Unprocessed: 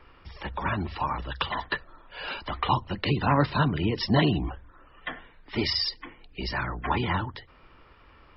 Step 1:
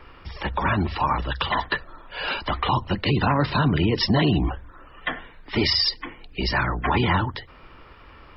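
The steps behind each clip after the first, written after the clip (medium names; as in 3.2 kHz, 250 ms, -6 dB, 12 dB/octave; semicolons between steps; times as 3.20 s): peak limiter -19 dBFS, peak gain reduction 8.5 dB; trim +7.5 dB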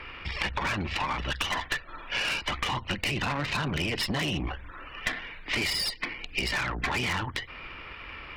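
peaking EQ 2.4 kHz +13.5 dB 1 oct; valve stage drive 19 dB, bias 0.75; compression 6:1, threshold -32 dBFS, peak gain reduction 11.5 dB; trim +5 dB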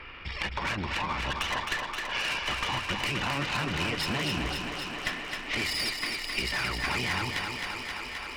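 thinning echo 263 ms, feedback 81%, high-pass 160 Hz, level -5 dB; trim -2.5 dB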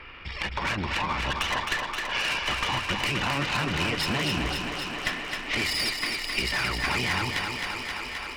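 level rider gain up to 3 dB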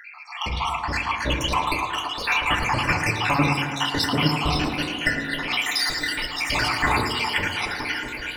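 random holes in the spectrogram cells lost 69%; tape echo 110 ms, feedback 84%, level -8.5 dB, low-pass 2.9 kHz; FDN reverb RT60 0.77 s, low-frequency decay 1.5×, high-frequency decay 0.35×, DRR 4 dB; trim +7.5 dB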